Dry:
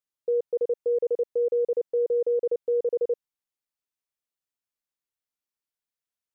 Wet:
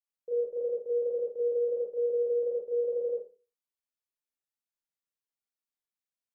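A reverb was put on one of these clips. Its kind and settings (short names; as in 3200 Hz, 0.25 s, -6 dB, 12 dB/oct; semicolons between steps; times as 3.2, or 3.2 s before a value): Schroeder reverb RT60 0.35 s, combs from 27 ms, DRR -7 dB; gain -14 dB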